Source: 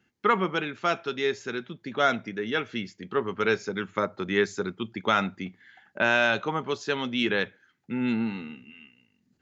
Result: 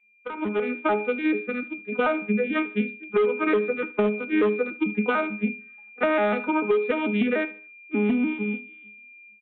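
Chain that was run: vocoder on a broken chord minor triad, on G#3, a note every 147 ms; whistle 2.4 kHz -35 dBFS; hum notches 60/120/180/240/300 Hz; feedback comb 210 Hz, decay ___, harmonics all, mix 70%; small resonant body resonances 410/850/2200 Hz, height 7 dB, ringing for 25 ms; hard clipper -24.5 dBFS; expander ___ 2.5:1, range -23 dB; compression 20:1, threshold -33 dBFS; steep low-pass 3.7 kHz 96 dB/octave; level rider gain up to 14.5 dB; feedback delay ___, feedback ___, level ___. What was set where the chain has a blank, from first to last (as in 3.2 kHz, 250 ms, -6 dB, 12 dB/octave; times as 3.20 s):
0.33 s, -34 dBFS, 74 ms, 37%, -20 dB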